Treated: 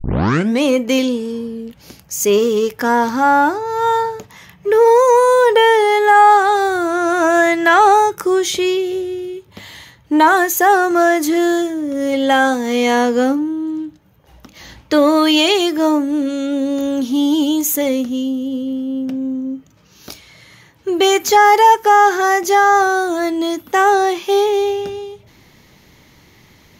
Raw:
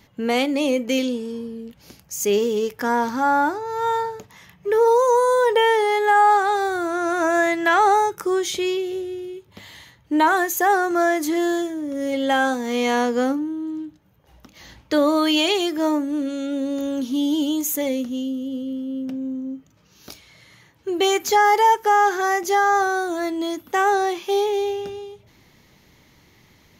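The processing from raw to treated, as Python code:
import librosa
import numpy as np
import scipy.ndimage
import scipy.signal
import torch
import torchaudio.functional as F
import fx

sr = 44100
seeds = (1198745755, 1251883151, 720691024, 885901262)

y = fx.tape_start_head(x, sr, length_s=0.63)
y = fx.transformer_sat(y, sr, knee_hz=390.0)
y = F.gain(torch.from_numpy(y), 6.5).numpy()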